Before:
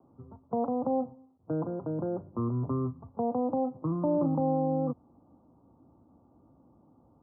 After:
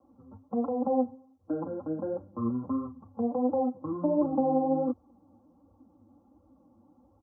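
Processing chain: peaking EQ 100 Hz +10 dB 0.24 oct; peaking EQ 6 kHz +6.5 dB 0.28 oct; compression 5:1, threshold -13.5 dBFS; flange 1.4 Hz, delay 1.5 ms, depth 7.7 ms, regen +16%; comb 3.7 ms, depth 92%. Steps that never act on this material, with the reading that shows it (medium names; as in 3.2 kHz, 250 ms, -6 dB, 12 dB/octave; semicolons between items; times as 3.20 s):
peaking EQ 6 kHz: input has nothing above 1.2 kHz; compression, threshold -13.5 dBFS: peak at its input -16.5 dBFS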